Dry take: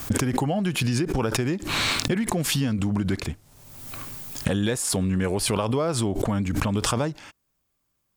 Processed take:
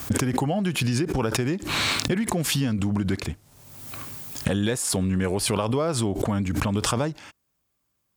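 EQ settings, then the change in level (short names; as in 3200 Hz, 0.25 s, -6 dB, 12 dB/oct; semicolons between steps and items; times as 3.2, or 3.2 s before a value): HPF 41 Hz; 0.0 dB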